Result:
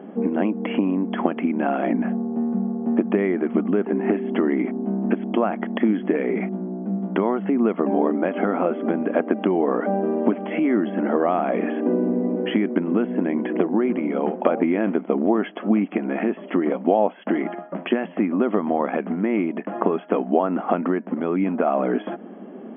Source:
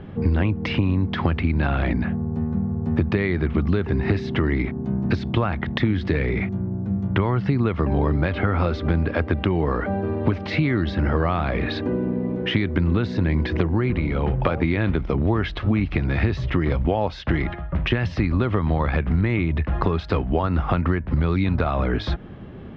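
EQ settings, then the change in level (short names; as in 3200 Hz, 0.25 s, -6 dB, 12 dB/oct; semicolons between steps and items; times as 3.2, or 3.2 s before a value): brick-wall FIR band-pass 190–3400 Hz; tilt shelf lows +6.5 dB, about 1100 Hz; bell 690 Hz +6.5 dB 0.45 oct; -1.5 dB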